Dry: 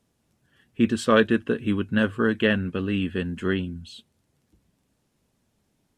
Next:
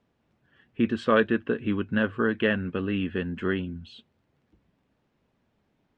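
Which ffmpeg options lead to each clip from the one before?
ffmpeg -i in.wav -filter_complex "[0:a]lowshelf=frequency=250:gain=-5,asplit=2[link_01][link_02];[link_02]acompressor=threshold=-29dB:ratio=6,volume=-1.5dB[link_03];[link_01][link_03]amix=inputs=2:normalize=0,lowpass=2700,volume=-3dB" out.wav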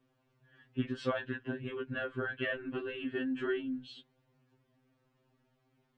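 ffmpeg -i in.wav -af "acompressor=threshold=-29dB:ratio=2.5,afftfilt=real='re*2.45*eq(mod(b,6),0)':imag='im*2.45*eq(mod(b,6),0)':win_size=2048:overlap=0.75" out.wav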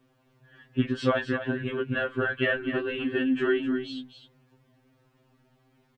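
ffmpeg -i in.wav -af "aecho=1:1:255:0.335,volume=8.5dB" out.wav

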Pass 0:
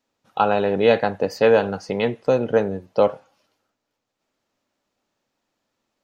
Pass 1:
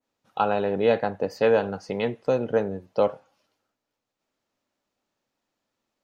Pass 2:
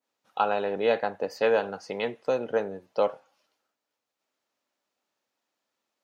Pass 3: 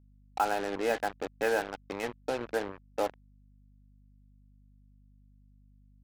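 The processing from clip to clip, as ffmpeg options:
ffmpeg -i in.wav -af "adynamicequalizer=threshold=0.0224:dfrequency=1700:dqfactor=0.7:tfrequency=1700:tqfactor=0.7:attack=5:release=100:ratio=0.375:range=3:mode=cutabove:tftype=highshelf,volume=-4.5dB" out.wav
ffmpeg -i in.wav -af "highpass=frequency=510:poles=1" out.wav
ffmpeg -i in.wav -af "highpass=120,equalizer=frequency=190:width_type=q:width=4:gain=-7,equalizer=frequency=300:width_type=q:width=4:gain=9,equalizer=frequency=520:width_type=q:width=4:gain=-5,equalizer=frequency=780:width_type=q:width=4:gain=4,equalizer=frequency=1100:width_type=q:width=4:gain=-6,equalizer=frequency=1600:width_type=q:width=4:gain=6,lowpass=frequency=2600:width=0.5412,lowpass=frequency=2600:width=1.3066,acrusher=bits=4:mix=0:aa=0.5,aeval=exprs='val(0)+0.002*(sin(2*PI*50*n/s)+sin(2*PI*2*50*n/s)/2+sin(2*PI*3*50*n/s)/3+sin(2*PI*4*50*n/s)/4+sin(2*PI*5*50*n/s)/5)':channel_layout=same,volume=-4.5dB" out.wav

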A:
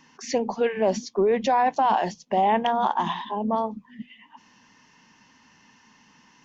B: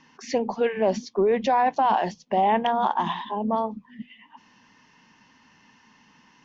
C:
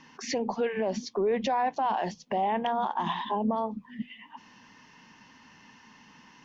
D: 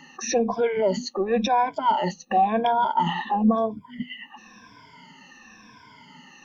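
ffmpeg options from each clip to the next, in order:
ffmpeg -i in.wav -af "lowpass=5200" out.wav
ffmpeg -i in.wav -af "alimiter=limit=-22dB:level=0:latency=1:release=217,volume=2.5dB" out.wav
ffmpeg -i in.wav -af "afftfilt=real='re*pow(10,24/40*sin(2*PI*(1.7*log(max(b,1)*sr/1024/100)/log(2)-(-0.96)*(pts-256)/sr)))':imag='im*pow(10,24/40*sin(2*PI*(1.7*log(max(b,1)*sr/1024/100)/log(2)-(-0.96)*(pts-256)/sr)))':win_size=1024:overlap=0.75" out.wav

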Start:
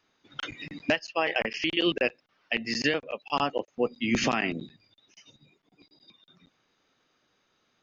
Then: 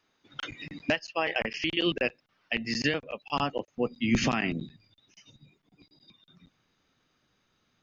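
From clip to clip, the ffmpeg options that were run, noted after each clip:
ffmpeg -i in.wav -af "asubboost=boost=2.5:cutoff=240,volume=-1.5dB" out.wav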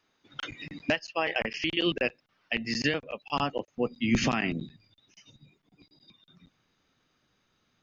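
ffmpeg -i in.wav -af anull out.wav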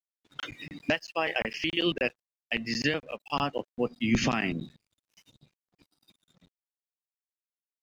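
ffmpeg -i in.wav -af "aeval=exprs='sgn(val(0))*max(abs(val(0))-0.00112,0)':channel_layout=same" out.wav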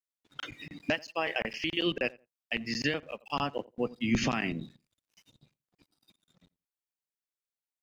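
ffmpeg -i in.wav -filter_complex "[0:a]asplit=2[link_01][link_02];[link_02]adelay=86,lowpass=frequency=1500:poles=1,volume=-21.5dB,asplit=2[link_03][link_04];[link_04]adelay=86,lowpass=frequency=1500:poles=1,volume=0.21[link_05];[link_01][link_03][link_05]amix=inputs=3:normalize=0,volume=-2.5dB" out.wav

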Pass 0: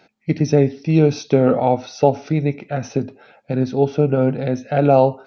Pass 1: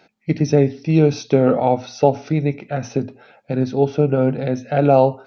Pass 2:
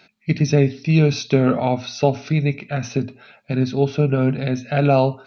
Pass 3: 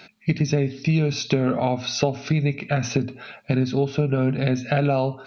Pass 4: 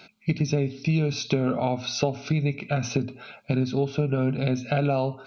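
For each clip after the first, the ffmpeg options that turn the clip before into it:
ffmpeg -i in.wav -af "bandreject=frequency=60:width_type=h:width=6,bandreject=frequency=120:width_type=h:width=6,bandreject=frequency=180:width_type=h:width=6,bandreject=frequency=240:width_type=h:width=6" out.wav
ffmpeg -i in.wav -af "equalizer=frequency=315:width_type=o:width=0.33:gain=-7,equalizer=frequency=500:width_type=o:width=0.33:gain=-10,equalizer=frequency=800:width_type=o:width=0.33:gain=-8,equalizer=frequency=2500:width_type=o:width=0.33:gain=5,equalizer=frequency=4000:width_type=o:width=0.33:gain=6,volume=2dB" out.wav
ffmpeg -i in.wav -af "acompressor=threshold=-25dB:ratio=5,volume=6.5dB" out.wav
ffmpeg -i in.wav -af "asuperstop=centerf=1800:order=4:qfactor=4.4,volume=-3dB" out.wav

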